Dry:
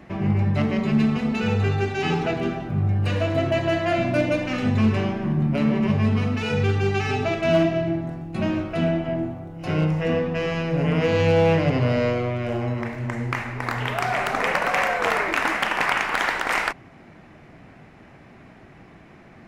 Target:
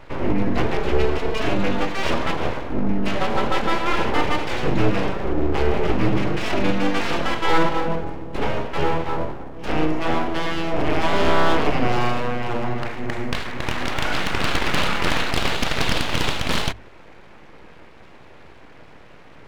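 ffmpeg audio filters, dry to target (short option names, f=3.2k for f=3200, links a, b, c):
-af "aeval=exprs='abs(val(0))':c=same,highshelf=f=5.5k:g=-6,bandreject=f=50:t=h:w=6,bandreject=f=100:t=h:w=6,volume=4.5dB"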